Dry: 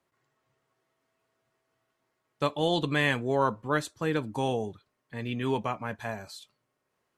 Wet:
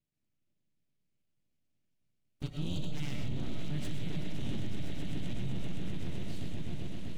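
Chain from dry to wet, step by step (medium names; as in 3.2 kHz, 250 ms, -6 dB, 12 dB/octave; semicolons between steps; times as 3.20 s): high-pass 82 Hz 12 dB/octave; echo with a slow build-up 128 ms, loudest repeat 8, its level -11 dB; ring modulator 300 Hz; FFT filter 150 Hz 0 dB, 1.1 kHz -28 dB, 2.7 kHz -5 dB; full-wave rectifier; peaking EQ 140 Hz +10 dB 2.4 oct; on a send at -4 dB: reverberation RT60 0.45 s, pre-delay 70 ms; on the sum: peak limiter -21 dBFS, peak gain reduction 6 dB; trim -3 dB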